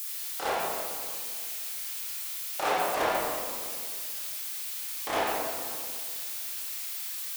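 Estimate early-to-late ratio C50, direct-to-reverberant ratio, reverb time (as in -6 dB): -3.0 dB, -9.0 dB, 2.0 s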